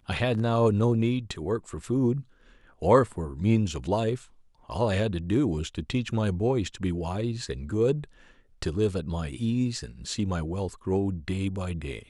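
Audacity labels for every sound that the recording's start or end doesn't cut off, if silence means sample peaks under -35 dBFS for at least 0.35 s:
2.820000	4.170000	sound
4.690000	8.040000	sound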